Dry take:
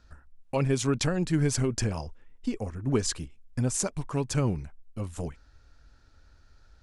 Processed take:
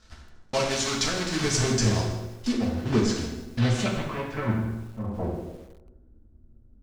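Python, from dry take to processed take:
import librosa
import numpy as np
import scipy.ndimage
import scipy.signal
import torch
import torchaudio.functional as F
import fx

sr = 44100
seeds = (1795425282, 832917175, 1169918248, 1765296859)

y = fx.block_float(x, sr, bits=3)
y = fx.graphic_eq(y, sr, hz=(125, 250, 500), db=(-9, -5, -7), at=(0.59, 1.44))
y = fx.echo_tape(y, sr, ms=92, feedback_pct=65, wet_db=-6.0, lp_hz=1200.0, drive_db=8.0, wow_cents=24)
y = fx.filter_sweep_lowpass(y, sr, from_hz=5900.0, to_hz=260.0, start_s=3.23, end_s=6.32, q=1.6)
y = fx.high_shelf(y, sr, hz=3500.0, db=-12.0, at=(2.52, 3.16))
y = fx.comb_fb(y, sr, f0_hz=110.0, decay_s=0.2, harmonics='all', damping=0.0, mix_pct=70, at=(4.14, 5.04))
y = fx.rev_fdn(y, sr, rt60_s=0.78, lf_ratio=1.05, hf_ratio=0.9, size_ms=27.0, drr_db=-0.5)
y = fx.echo_crushed(y, sr, ms=159, feedback_pct=35, bits=7, wet_db=-15.0)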